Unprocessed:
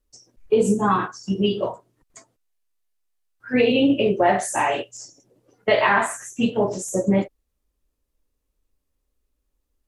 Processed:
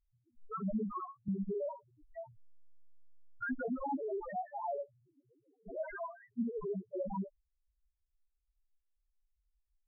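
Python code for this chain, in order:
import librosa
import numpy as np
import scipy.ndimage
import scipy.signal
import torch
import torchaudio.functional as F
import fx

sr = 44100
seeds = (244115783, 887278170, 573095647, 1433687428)

y = np.repeat(scipy.signal.resample_poly(x, 1, 8), 8)[:len(x)]
y = 10.0 ** (-20.5 / 20.0) * (np.abs((y / 10.0 ** (-20.5 / 20.0) + 3.0) % 4.0 - 2.0) - 1.0)
y = fx.spec_topn(y, sr, count=1)
y = fx.band_squash(y, sr, depth_pct=100, at=(1.28, 3.68))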